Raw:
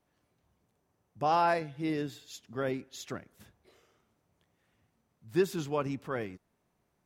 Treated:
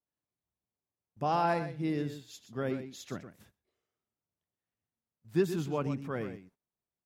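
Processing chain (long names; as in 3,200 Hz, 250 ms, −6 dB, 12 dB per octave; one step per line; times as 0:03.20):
dynamic equaliser 170 Hz, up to +7 dB, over −48 dBFS, Q 0.8
on a send: single-tap delay 123 ms −10.5 dB
on the sum: noise gate −57 dBFS, range −18 dB
level −3.5 dB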